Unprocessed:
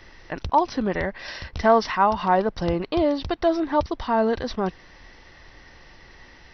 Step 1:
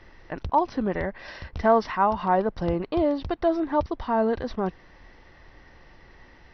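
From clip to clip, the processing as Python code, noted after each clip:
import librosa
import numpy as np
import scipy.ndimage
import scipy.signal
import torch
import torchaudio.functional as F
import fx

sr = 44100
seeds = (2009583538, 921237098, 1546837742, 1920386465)

y = fx.high_shelf(x, sr, hz=2900.0, db=-11.5)
y = F.gain(torch.from_numpy(y), -1.5).numpy()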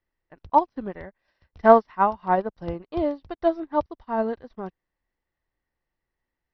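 y = fx.upward_expand(x, sr, threshold_db=-42.0, expansion=2.5)
y = F.gain(torch.from_numpy(y), 7.0).numpy()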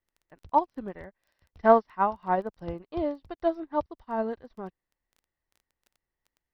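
y = fx.dmg_crackle(x, sr, seeds[0], per_s=10.0, level_db=-42.0)
y = F.gain(torch.from_numpy(y), -4.5).numpy()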